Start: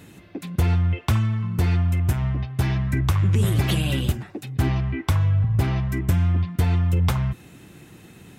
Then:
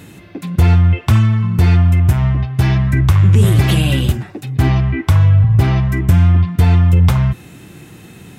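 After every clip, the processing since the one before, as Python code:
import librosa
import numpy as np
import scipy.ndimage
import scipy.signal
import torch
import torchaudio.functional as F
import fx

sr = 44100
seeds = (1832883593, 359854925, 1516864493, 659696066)

y = fx.hpss(x, sr, part='harmonic', gain_db=6)
y = y * librosa.db_to_amplitude(4.0)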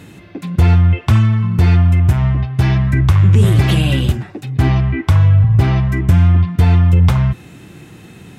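y = fx.high_shelf(x, sr, hz=9600.0, db=-9.0)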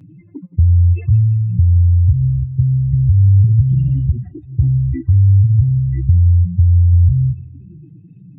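y = fx.spec_expand(x, sr, power=3.2)
y = fx.env_flanger(y, sr, rest_ms=8.4, full_db=-12.0)
y = fx.echo_feedback(y, sr, ms=171, feedback_pct=58, wet_db=-22)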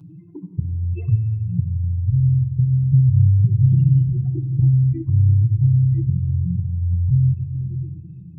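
y = fx.fixed_phaser(x, sr, hz=370.0, stages=8)
y = fx.room_shoebox(y, sr, seeds[0], volume_m3=2200.0, walls='mixed', distance_m=0.73)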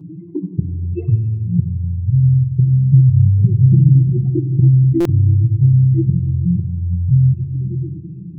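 y = fx.small_body(x, sr, hz=(240.0, 340.0), ring_ms=25, db=18)
y = fx.buffer_glitch(y, sr, at_s=(5.0,), block=256, repeats=8)
y = y * librosa.db_to_amplitude(-5.0)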